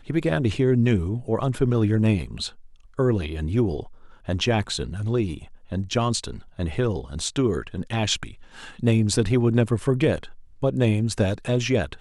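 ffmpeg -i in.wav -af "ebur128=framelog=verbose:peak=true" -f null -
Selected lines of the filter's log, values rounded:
Integrated loudness:
  I:         -23.9 LUFS
  Threshold: -34.3 LUFS
Loudness range:
  LRA:         3.7 LU
  Threshold: -44.8 LUFS
  LRA low:   -26.7 LUFS
  LRA high:  -23.0 LUFS
True peak:
  Peak:       -7.0 dBFS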